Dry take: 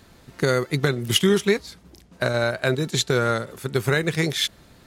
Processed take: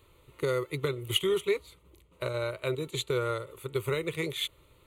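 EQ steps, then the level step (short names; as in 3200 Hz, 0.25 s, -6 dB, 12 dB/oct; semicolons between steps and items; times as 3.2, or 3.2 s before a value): fixed phaser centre 1100 Hz, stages 8; -6.0 dB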